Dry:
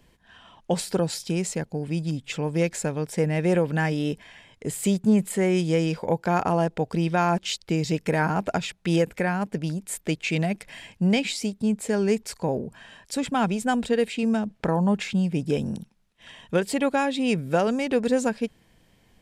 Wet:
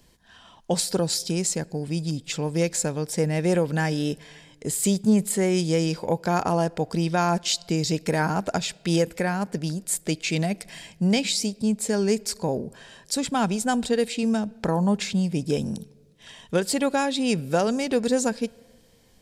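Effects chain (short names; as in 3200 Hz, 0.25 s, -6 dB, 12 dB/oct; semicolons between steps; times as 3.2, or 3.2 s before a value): resonant high shelf 3500 Hz +6 dB, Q 1.5; on a send: reverb RT60 1.6 s, pre-delay 3 ms, DRR 23 dB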